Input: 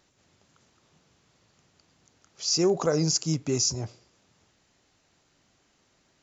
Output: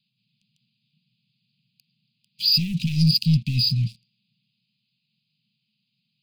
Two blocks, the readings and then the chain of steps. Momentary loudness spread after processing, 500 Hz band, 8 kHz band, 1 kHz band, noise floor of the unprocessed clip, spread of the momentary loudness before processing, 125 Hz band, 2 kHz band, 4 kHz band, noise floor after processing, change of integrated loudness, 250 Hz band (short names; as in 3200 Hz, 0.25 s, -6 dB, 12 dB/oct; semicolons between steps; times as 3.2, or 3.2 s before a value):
7 LU, under -35 dB, n/a, under -40 dB, -68 dBFS, 10 LU, +10.5 dB, +4.0 dB, +9.0 dB, -77 dBFS, +5.0 dB, +4.0 dB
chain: FFT band-pass 110–5000 Hz; sample leveller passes 3; Chebyshev band-stop 220–2500 Hz, order 5; gain +3 dB